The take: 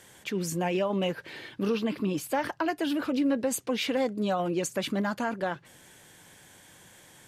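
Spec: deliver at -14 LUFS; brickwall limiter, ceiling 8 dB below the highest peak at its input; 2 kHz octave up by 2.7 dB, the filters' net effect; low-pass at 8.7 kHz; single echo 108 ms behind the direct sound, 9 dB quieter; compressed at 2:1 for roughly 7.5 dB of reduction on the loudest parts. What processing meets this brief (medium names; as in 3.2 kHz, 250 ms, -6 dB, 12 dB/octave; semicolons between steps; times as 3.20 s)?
low-pass 8.7 kHz; peaking EQ 2 kHz +3.5 dB; compression 2:1, threshold -37 dBFS; peak limiter -30.5 dBFS; delay 108 ms -9 dB; trim +25 dB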